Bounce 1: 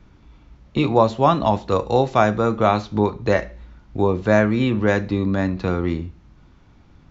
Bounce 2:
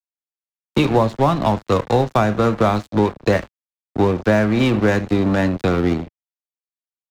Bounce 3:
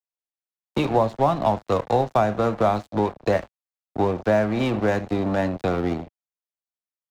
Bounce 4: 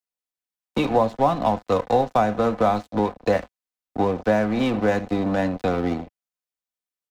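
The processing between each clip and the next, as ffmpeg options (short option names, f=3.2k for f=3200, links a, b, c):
-filter_complex "[0:a]aecho=1:1:80|160:0.0891|0.0276,aeval=exprs='sgn(val(0))*max(abs(val(0))-0.0355,0)':c=same,acrossover=split=110|250[a][b][c];[a]acompressor=threshold=-36dB:ratio=4[d];[b]acompressor=threshold=-30dB:ratio=4[e];[c]acompressor=threshold=-24dB:ratio=4[f];[d][e][f]amix=inputs=3:normalize=0,volume=8.5dB"
-af "equalizer=f=700:t=o:w=0.95:g=7.5,volume=-7.5dB"
-af "aecho=1:1:4:0.37"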